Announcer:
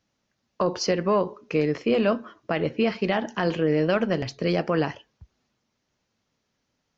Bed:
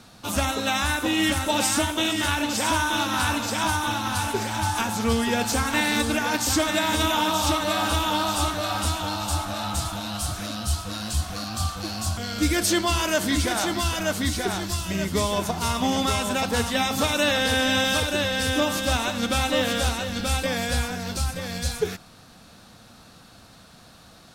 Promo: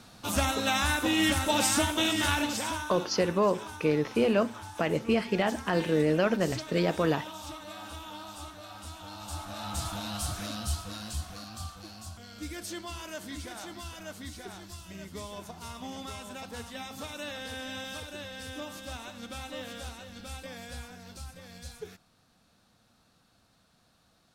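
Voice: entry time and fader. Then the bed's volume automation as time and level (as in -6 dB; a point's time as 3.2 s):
2.30 s, -3.0 dB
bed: 2.4 s -3 dB
3.09 s -19 dB
8.83 s -19 dB
9.93 s -5 dB
10.53 s -5 dB
12.16 s -17 dB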